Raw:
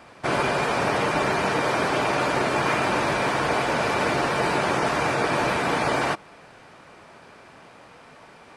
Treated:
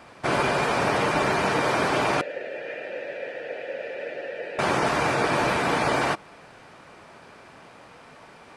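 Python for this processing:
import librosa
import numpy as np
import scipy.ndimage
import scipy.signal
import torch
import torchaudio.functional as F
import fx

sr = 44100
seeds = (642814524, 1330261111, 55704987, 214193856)

y = fx.vowel_filter(x, sr, vowel='e', at=(2.21, 4.59))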